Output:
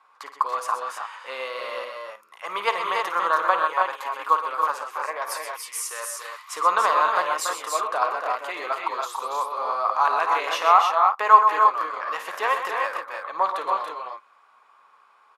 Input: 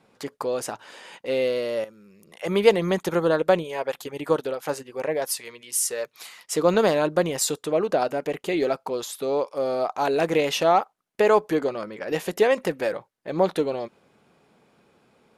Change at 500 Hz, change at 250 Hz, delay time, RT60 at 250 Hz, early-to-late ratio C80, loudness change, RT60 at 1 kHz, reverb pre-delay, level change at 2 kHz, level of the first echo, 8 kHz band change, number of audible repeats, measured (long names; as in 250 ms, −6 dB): −9.0 dB, −20.0 dB, 54 ms, no reverb audible, no reverb audible, +1.0 dB, no reverb audible, no reverb audible, +4.0 dB, −11.5 dB, −4.0 dB, 4